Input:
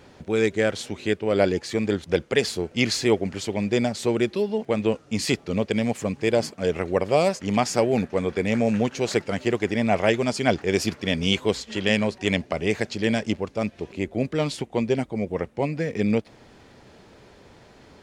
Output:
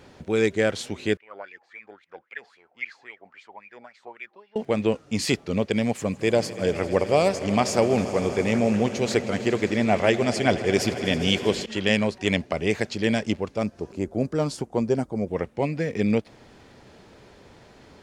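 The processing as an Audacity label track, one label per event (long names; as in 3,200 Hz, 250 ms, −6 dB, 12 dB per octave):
1.170000	4.560000	LFO wah 3.7 Hz 740–2,400 Hz, Q 10
5.940000	11.660000	echo that builds up and dies away 80 ms, loudest repeat 5, its level −18 dB
13.630000	15.280000	flat-topped bell 2,700 Hz −10 dB 1.3 octaves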